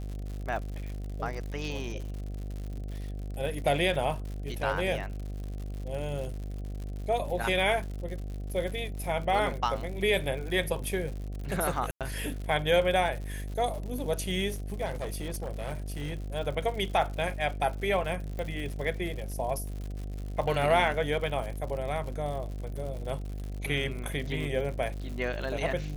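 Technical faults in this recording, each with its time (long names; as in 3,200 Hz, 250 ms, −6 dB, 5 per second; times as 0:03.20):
mains buzz 50 Hz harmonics 15 −36 dBFS
surface crackle 120 per second −37 dBFS
0:11.91–0:12.01: drop-out 97 ms
0:14.85–0:16.33: clipping −29.5 dBFS
0:18.39: click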